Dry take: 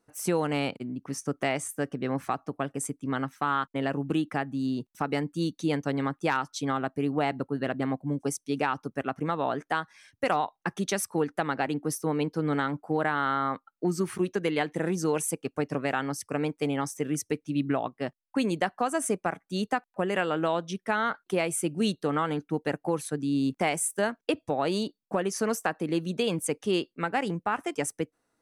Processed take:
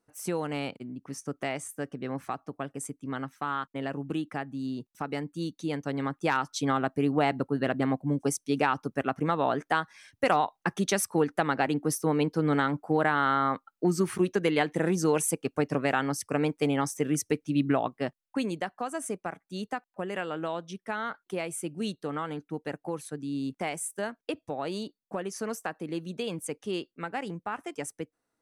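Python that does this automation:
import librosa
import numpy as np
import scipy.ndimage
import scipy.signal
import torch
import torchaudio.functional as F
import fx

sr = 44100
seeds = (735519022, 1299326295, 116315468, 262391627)

y = fx.gain(x, sr, db=fx.line((5.72, -4.5), (6.57, 2.0), (17.96, 2.0), (18.66, -6.0)))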